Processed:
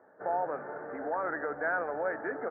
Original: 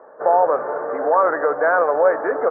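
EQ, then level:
low-pass filter 2,100 Hz 6 dB per octave
parametric band 520 Hz −14.5 dB 1.3 octaves
parametric band 1,100 Hz −13.5 dB 0.53 octaves
−2.5 dB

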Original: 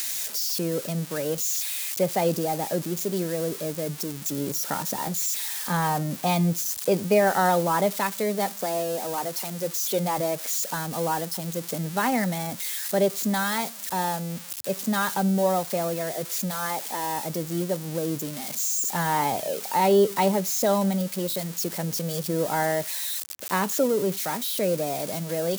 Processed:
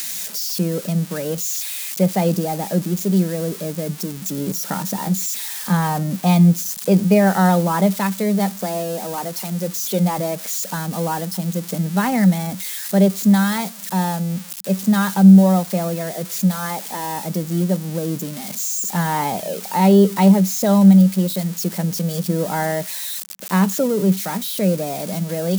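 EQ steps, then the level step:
parametric band 190 Hz +14 dB 0.35 octaves
+2.5 dB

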